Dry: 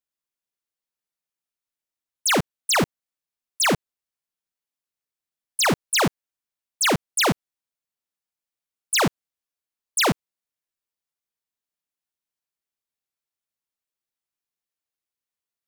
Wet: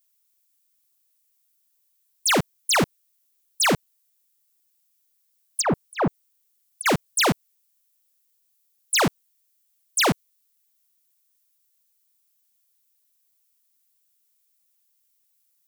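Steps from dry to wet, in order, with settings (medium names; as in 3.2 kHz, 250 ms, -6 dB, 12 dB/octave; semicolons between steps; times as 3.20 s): vibrato 0.78 Hz 6.8 cents; 5.61–6.86 s: low-pass that closes with the level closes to 1.1 kHz, closed at -21 dBFS; added noise violet -69 dBFS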